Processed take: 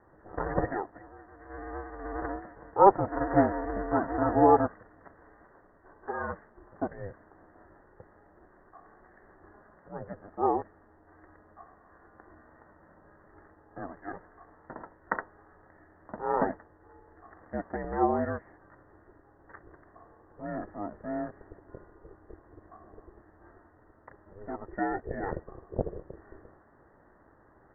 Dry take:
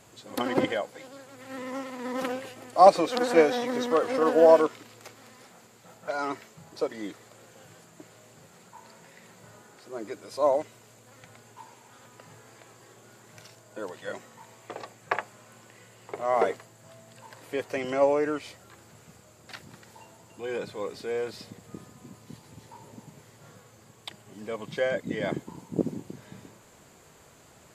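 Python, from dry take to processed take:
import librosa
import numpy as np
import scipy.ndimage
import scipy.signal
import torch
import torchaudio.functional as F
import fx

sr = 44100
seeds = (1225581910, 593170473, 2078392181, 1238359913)

y = x * np.sin(2.0 * np.pi * 200.0 * np.arange(len(x)) / sr)
y = scipy.signal.sosfilt(scipy.signal.cheby1(8, 1.0, 1900.0, 'lowpass', fs=sr, output='sos'), y)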